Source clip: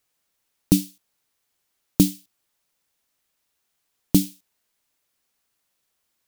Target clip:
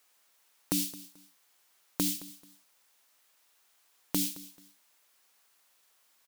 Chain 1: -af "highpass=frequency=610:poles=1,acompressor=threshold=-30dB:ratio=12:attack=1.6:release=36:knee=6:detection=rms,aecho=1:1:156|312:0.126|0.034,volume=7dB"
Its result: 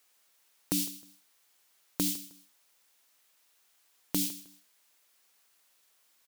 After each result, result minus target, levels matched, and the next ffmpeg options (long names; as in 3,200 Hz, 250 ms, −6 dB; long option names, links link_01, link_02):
echo 62 ms early; 1,000 Hz band −3.0 dB
-af "highpass=frequency=610:poles=1,acompressor=threshold=-30dB:ratio=12:attack=1.6:release=36:knee=6:detection=rms,aecho=1:1:218|436:0.126|0.034,volume=7dB"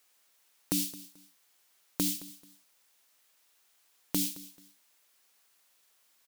1,000 Hz band −2.5 dB
-af "highpass=frequency=610:poles=1,acompressor=threshold=-30dB:ratio=12:attack=1.6:release=36:knee=6:detection=rms,equalizer=frequency=1000:width_type=o:width=1.6:gain=3,aecho=1:1:218|436:0.126|0.034,volume=7dB"